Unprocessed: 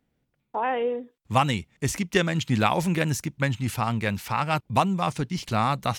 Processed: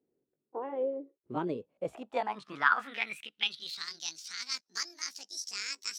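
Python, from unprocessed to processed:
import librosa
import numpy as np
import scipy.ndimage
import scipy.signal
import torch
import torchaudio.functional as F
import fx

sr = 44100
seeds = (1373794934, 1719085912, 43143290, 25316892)

y = fx.pitch_glide(x, sr, semitones=12.0, runs='starting unshifted')
y = fx.filter_sweep_bandpass(y, sr, from_hz=390.0, to_hz=5500.0, start_s=1.42, end_s=3.99, q=5.6)
y = F.gain(torch.from_numpy(y), 6.5).numpy()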